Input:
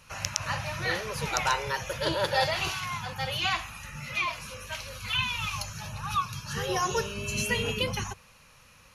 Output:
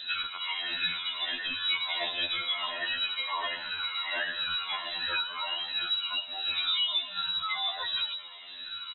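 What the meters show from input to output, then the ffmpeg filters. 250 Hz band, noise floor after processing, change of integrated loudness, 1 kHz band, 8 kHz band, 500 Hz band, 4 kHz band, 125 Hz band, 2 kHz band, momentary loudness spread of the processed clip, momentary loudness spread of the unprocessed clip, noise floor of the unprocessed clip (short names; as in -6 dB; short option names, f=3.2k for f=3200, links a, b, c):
-14.5 dB, -43 dBFS, +0.5 dB, -6.0 dB, under -40 dB, -13.0 dB, +6.0 dB, under -20 dB, -1.5 dB, 5 LU, 10 LU, -56 dBFS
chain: -filter_complex "[0:a]afftfilt=real='re*pow(10,17/40*sin(2*PI*(1.4*log(max(b,1)*sr/1024/100)/log(2)-(1.4)*(pts-256)/sr)))':imag='im*pow(10,17/40*sin(2*PI*(1.4*log(max(b,1)*sr/1024/100)/log(2)-(1.4)*(pts-256)/sr)))':win_size=1024:overlap=0.75,highpass=62,equalizer=f=110:w=4.7:g=14,aecho=1:1:2.7:0.66,acrossover=split=650|2600[a][b][c];[a]acompressor=mode=upward:threshold=-35dB:ratio=2.5[d];[b]alimiter=limit=-20.5dB:level=0:latency=1:release=309[e];[d][e][c]amix=inputs=3:normalize=0,acompressor=threshold=-32dB:ratio=20,asplit=5[f][g][h][i][j];[g]adelay=224,afreqshift=87,volume=-17.5dB[k];[h]adelay=448,afreqshift=174,volume=-23.7dB[l];[i]adelay=672,afreqshift=261,volume=-29.9dB[m];[j]adelay=896,afreqshift=348,volume=-36.1dB[n];[f][k][l][m][n]amix=inputs=5:normalize=0,lowpass=f=3.4k:t=q:w=0.5098,lowpass=f=3.4k:t=q:w=0.6013,lowpass=f=3.4k:t=q:w=0.9,lowpass=f=3.4k:t=q:w=2.563,afreqshift=-4000,afftfilt=real='re*2*eq(mod(b,4),0)':imag='im*2*eq(mod(b,4),0)':win_size=2048:overlap=0.75,volume=7dB"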